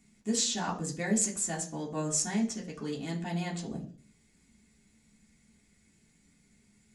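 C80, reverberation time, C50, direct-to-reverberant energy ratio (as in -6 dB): 15.5 dB, 0.45 s, 12.0 dB, -4.0 dB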